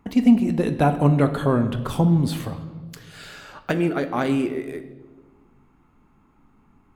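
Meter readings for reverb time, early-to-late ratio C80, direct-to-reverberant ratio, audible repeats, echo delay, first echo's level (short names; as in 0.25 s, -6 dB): 1.4 s, 13.5 dB, 8.0 dB, none, none, none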